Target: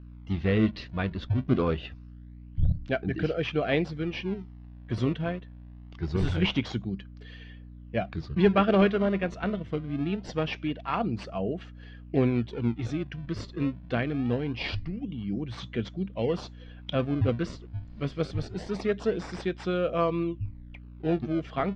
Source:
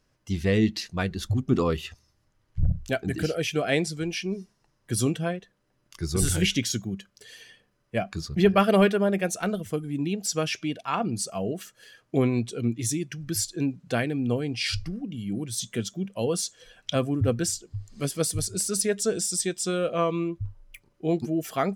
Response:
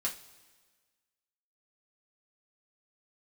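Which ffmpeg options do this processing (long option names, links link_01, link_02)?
-filter_complex "[0:a]aeval=exprs='val(0)+0.00708*(sin(2*PI*60*n/s)+sin(2*PI*2*60*n/s)/2+sin(2*PI*3*60*n/s)/3+sin(2*PI*4*60*n/s)/4+sin(2*PI*5*60*n/s)/5)':channel_layout=same,asplit=2[link_01][link_02];[link_02]acrusher=samples=31:mix=1:aa=0.000001:lfo=1:lforange=49.6:lforate=0.24,volume=-11dB[link_03];[link_01][link_03]amix=inputs=2:normalize=0,lowpass=frequency=3600:width=0.5412,lowpass=frequency=3600:width=1.3066,volume=-3dB"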